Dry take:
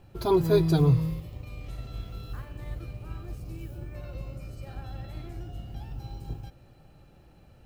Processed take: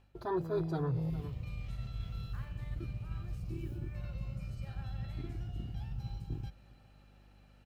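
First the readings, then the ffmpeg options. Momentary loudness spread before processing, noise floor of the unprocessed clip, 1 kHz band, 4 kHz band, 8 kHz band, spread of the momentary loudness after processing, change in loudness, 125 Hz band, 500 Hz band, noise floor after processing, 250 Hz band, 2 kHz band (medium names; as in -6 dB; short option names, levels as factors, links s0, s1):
19 LU, -55 dBFS, -7.5 dB, -12.0 dB, under -10 dB, 8 LU, -9.5 dB, -8.5 dB, -11.5 dB, -61 dBFS, -10.5 dB, -6.5 dB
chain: -filter_complex "[0:a]acontrast=46,lowshelf=f=120:g=-6,afwtdn=0.0355,lowpass=f=3300:p=1,tiltshelf=f=920:g=-7,asplit=2[s0][s1];[s1]adelay=408.2,volume=0.0447,highshelf=f=4000:g=-9.18[s2];[s0][s2]amix=inputs=2:normalize=0,aeval=exprs='val(0)+0.000562*(sin(2*PI*50*n/s)+sin(2*PI*2*50*n/s)/2+sin(2*PI*3*50*n/s)/3+sin(2*PI*4*50*n/s)/4+sin(2*PI*5*50*n/s)/5)':c=same,areverse,acompressor=threshold=0.01:ratio=4,areverse,volume=1.88"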